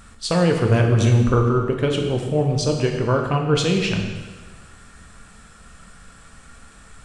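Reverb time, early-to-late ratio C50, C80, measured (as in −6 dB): 1.4 s, 5.0 dB, 6.5 dB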